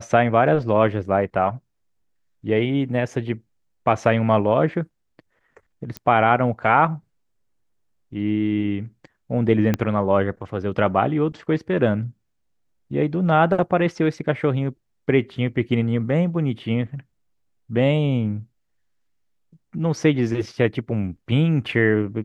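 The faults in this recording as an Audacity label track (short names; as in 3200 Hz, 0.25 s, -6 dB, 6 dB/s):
5.970000	5.970000	pop -15 dBFS
9.740000	9.740000	pop -8 dBFS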